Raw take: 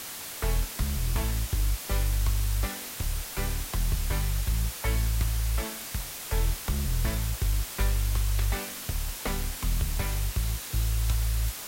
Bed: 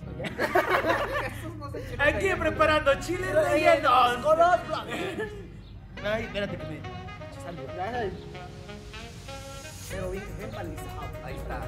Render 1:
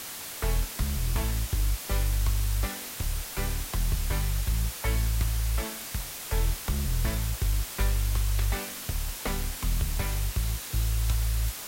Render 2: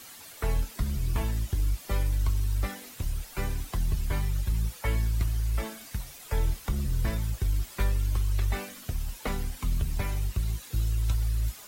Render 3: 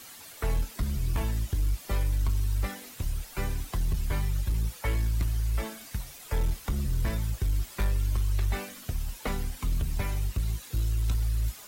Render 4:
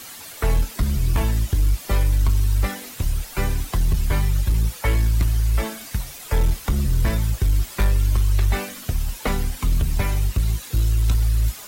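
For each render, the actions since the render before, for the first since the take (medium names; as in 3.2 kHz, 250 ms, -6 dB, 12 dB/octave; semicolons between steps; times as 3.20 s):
no audible change
noise reduction 11 dB, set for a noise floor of -39 dBFS
overload inside the chain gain 21 dB
trim +8.5 dB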